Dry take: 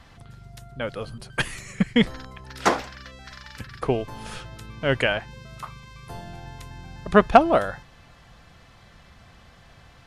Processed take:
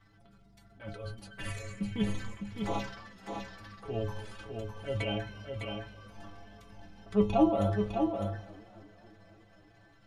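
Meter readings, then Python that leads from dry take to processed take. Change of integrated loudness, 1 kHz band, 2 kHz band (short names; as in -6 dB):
-10.5 dB, -13.5 dB, -16.0 dB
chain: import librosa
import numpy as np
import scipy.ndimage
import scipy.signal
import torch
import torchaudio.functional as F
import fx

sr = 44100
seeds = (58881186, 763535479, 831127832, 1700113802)

p1 = fx.low_shelf(x, sr, hz=360.0, db=4.0)
p2 = fx.env_flanger(p1, sr, rest_ms=7.5, full_db=-18.0)
p3 = fx.high_shelf(p2, sr, hz=4900.0, db=-6.5)
p4 = fx.transient(p3, sr, attack_db=-7, sustain_db=10)
p5 = fx.stiff_resonator(p4, sr, f0_hz=100.0, decay_s=0.32, stiffness=0.008)
p6 = p5 + fx.echo_single(p5, sr, ms=606, db=-5.5, dry=0)
y = fx.echo_warbled(p6, sr, ms=270, feedback_pct=69, rate_hz=2.8, cents=128, wet_db=-23.0)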